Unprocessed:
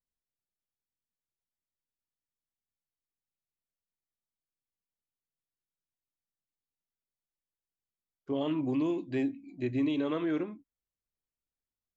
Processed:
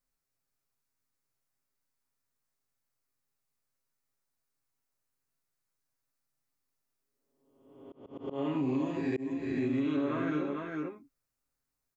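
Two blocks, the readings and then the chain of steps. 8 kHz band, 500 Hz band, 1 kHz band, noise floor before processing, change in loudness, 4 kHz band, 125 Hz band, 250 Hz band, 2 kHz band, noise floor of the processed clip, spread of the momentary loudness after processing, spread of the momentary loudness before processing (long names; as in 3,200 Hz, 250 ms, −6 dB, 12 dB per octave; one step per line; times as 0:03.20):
can't be measured, −0.5 dB, +2.5 dB, below −85 dBFS, −1.0 dB, −4.5 dB, +1.0 dB, −0.5 dB, +2.5 dB, −85 dBFS, 11 LU, 6 LU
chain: peak hold with a rise ahead of every peak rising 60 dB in 1.06 s
comb filter 7.4 ms, depth 73%
multi-tap delay 53/101/450 ms −10/−10/−8.5 dB
volume swells 270 ms
parametric band 3,200 Hz −8 dB 0.44 octaves
downward compressor 3 to 1, threshold −33 dBFS, peak gain reduction 9.5 dB
parametric band 1,300 Hz +3.5 dB 0.44 octaves
level +2.5 dB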